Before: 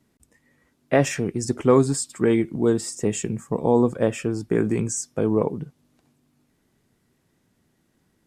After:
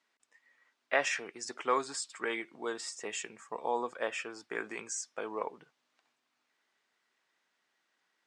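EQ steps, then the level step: HPF 1100 Hz 12 dB/oct; air absorption 110 m; 0.0 dB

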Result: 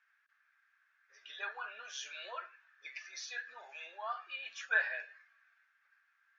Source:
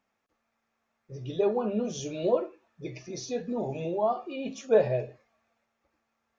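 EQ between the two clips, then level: ladder high-pass 1500 Hz, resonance 80%; LPF 4800 Hz 12 dB/oct; +11.5 dB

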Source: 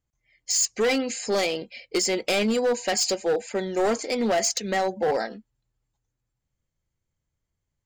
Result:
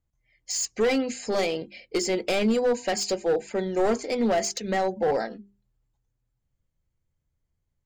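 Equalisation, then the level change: tilt -1.5 dB/oct; notches 50/100/150/200/250/300/350/400 Hz; -1.5 dB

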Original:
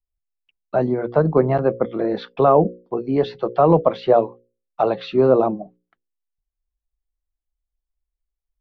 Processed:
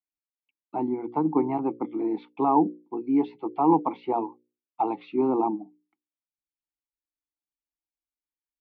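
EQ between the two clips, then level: dynamic EQ 910 Hz, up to +7 dB, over -28 dBFS, Q 1; vowel filter u; +4.0 dB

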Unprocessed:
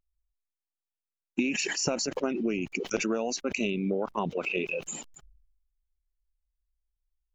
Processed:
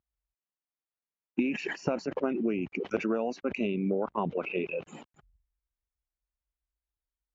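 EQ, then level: HPF 64 Hz 12 dB/oct; LPF 2000 Hz 12 dB/oct; 0.0 dB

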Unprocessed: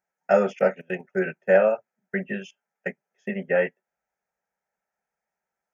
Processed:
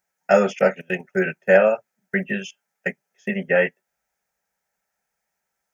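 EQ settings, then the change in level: low shelf 150 Hz +8 dB; high shelf 2100 Hz +11 dB; +1.5 dB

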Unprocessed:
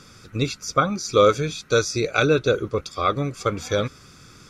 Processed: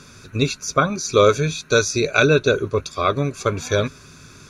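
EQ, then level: ripple EQ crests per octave 1.5, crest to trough 7 dB; +3.0 dB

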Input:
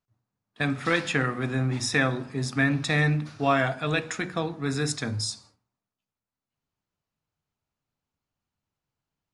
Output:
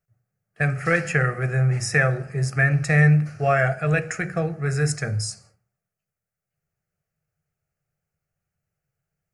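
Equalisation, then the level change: bell 160 Hz +8.5 dB 0.88 oct; fixed phaser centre 980 Hz, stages 6; +5.0 dB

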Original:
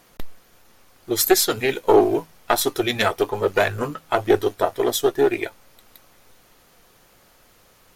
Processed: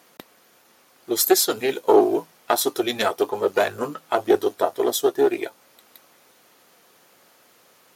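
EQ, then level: HPF 220 Hz 12 dB/oct; dynamic EQ 2100 Hz, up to -6 dB, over -39 dBFS, Q 1.3; 0.0 dB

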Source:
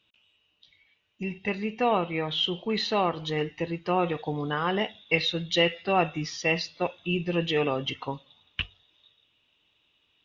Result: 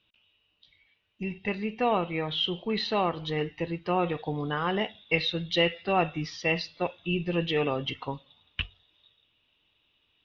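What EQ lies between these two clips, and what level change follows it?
LPF 5200 Hz 24 dB/oct; low shelf 66 Hz +8 dB; -1.5 dB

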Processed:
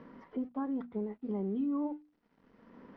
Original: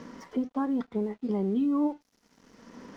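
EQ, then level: air absorption 400 m; notches 60/120/180/240/300 Hz; -5.5 dB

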